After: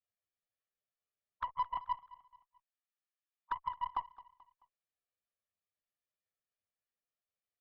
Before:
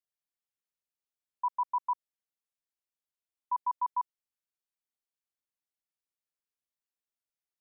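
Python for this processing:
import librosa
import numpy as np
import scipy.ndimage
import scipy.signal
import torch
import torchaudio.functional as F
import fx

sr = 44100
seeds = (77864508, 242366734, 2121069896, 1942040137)

y = fx.phase_scramble(x, sr, seeds[0], window_ms=50)
y = fx.highpass(y, sr, hz=770.0, slope=24, at=(1.77, 3.97))
y = fx.peak_eq(y, sr, hz=1000.0, db=-8.5, octaves=0.3)
y = y + 0.53 * np.pad(y, (int(1.7 * sr / 1000.0), 0))[:len(y)]
y = fx.env_flanger(y, sr, rest_ms=10.0, full_db=-39.5)
y = fx.cheby_harmonics(y, sr, harmonics=(2, 6, 7), levels_db=(-29, -29, -23), full_scale_db=-31.5)
y = fx.air_absorb(y, sr, metres=340.0)
y = fx.echo_feedback(y, sr, ms=217, feedback_pct=42, wet_db=-19)
y = y * librosa.db_to_amplitude(10.0)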